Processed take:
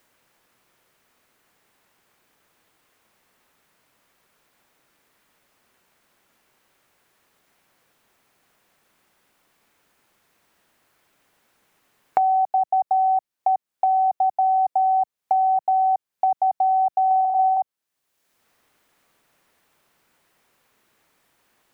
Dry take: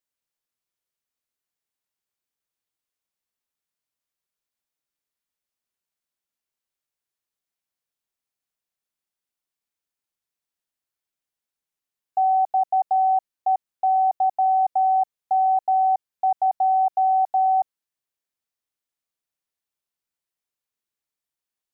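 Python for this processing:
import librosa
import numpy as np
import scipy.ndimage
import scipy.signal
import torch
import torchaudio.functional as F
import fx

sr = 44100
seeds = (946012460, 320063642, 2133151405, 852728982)

y = fx.room_flutter(x, sr, wall_m=8.4, rt60_s=1.0, at=(17.06, 17.57))
y = fx.band_squash(y, sr, depth_pct=100)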